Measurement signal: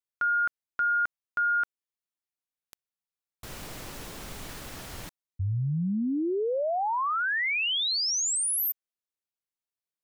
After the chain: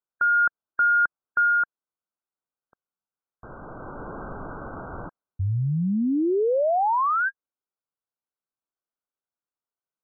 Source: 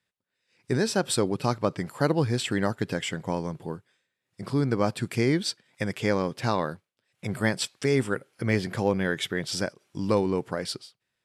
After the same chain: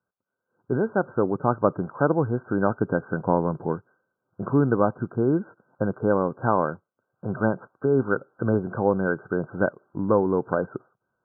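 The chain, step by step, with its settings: vocal rider within 4 dB 0.5 s; brick-wall FIR low-pass 1600 Hz; low shelf 170 Hz -7 dB; gain +5.5 dB

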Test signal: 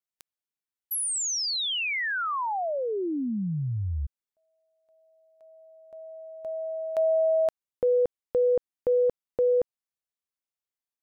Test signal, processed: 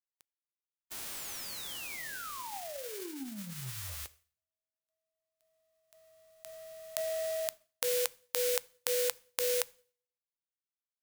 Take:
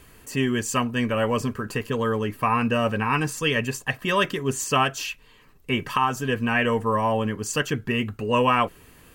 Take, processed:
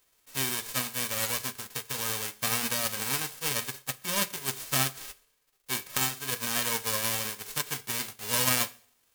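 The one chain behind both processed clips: spectral whitening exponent 0.1; two-slope reverb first 0.59 s, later 1.6 s, from -27 dB, DRR 9.5 dB; power-law curve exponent 1.4; gain -2.5 dB

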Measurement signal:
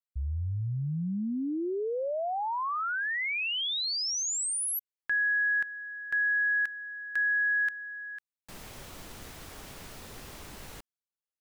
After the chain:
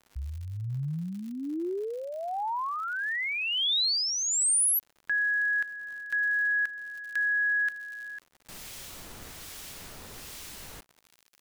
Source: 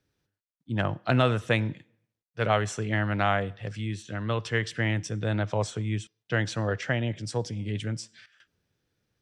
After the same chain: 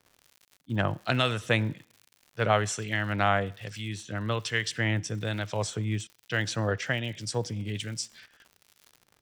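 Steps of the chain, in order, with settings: high shelf 2300 Hz +8 dB; crackle 120/s -39 dBFS; harmonic tremolo 1.2 Hz, depth 50%, crossover 1800 Hz

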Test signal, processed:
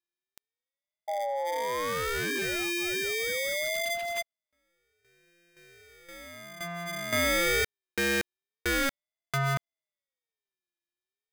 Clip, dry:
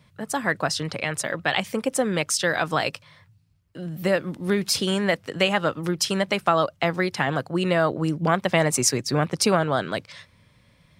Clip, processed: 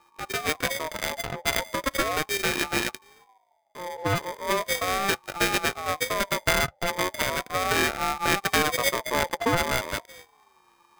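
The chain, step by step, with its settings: sample sorter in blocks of 32 samples; ring modulator with a swept carrier 860 Hz, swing 20%, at 0.37 Hz

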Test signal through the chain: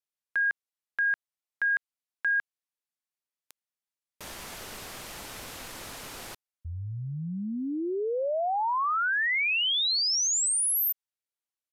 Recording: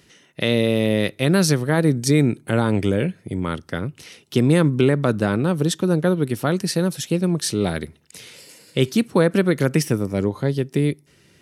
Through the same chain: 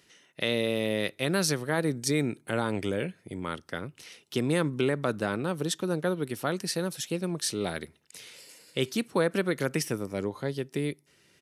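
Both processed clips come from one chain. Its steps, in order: low shelf 280 Hz -10 dB; downsampling 32000 Hz; gain -5.5 dB

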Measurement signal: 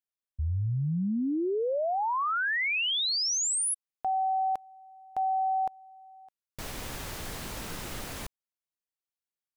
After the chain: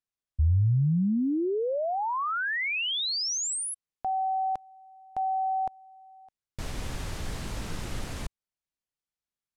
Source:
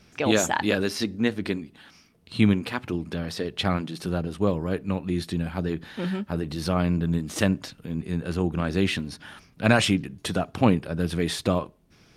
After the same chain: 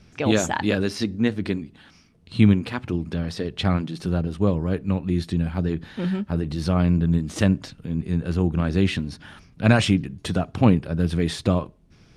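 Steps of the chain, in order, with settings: LPF 9500 Hz 12 dB/oct; low shelf 200 Hz +9.5 dB; gain -1 dB

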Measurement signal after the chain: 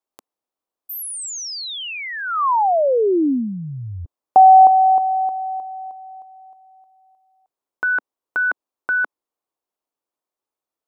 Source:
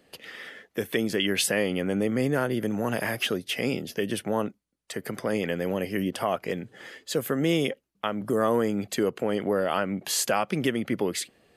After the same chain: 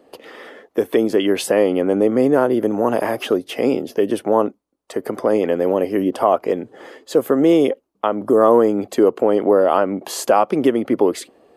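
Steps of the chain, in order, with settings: band shelf 550 Hz +13 dB 2.6 oct; gain -1 dB

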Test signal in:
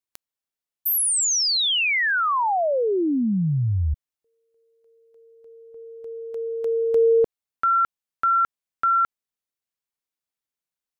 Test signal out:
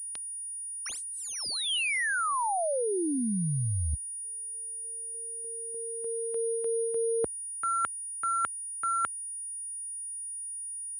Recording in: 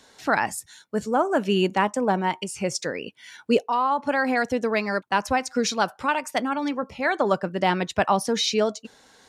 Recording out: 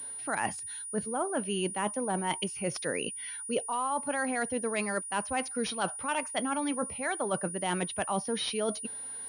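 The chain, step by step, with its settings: dynamic EQ 3200 Hz, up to +7 dB, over -48 dBFS, Q 4.5; reverse; compressor 8:1, threshold -28 dBFS; reverse; HPF 55 Hz 24 dB/oct; pulse-width modulation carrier 9600 Hz

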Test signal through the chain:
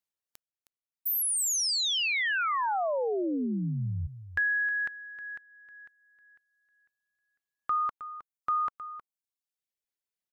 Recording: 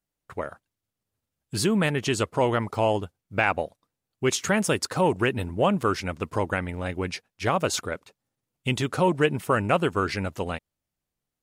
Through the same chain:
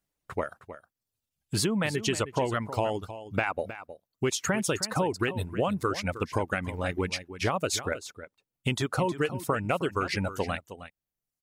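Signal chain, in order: reverb removal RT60 1.1 s; compressor, threshold -27 dBFS; echo 0.314 s -13 dB; gain +3 dB

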